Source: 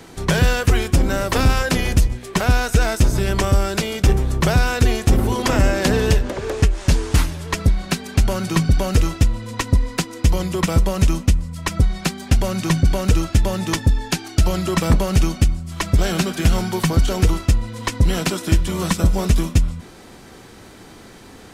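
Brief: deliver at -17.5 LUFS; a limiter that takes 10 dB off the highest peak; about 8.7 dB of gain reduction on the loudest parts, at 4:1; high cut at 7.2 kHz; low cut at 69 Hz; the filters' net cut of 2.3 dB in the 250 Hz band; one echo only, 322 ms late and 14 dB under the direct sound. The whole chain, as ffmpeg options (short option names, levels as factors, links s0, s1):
-af "highpass=69,lowpass=7200,equalizer=f=250:t=o:g=-3.5,acompressor=threshold=0.0708:ratio=4,alimiter=limit=0.106:level=0:latency=1,aecho=1:1:322:0.2,volume=4.47"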